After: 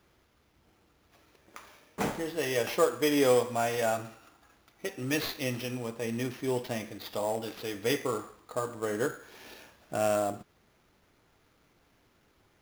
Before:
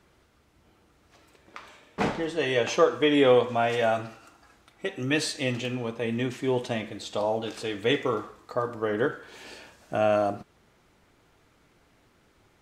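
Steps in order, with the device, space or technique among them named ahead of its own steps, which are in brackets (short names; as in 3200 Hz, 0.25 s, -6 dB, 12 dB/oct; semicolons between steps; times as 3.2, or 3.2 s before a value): early companding sampler (sample-rate reducer 8300 Hz, jitter 0%; companded quantiser 6-bit); gain -4.5 dB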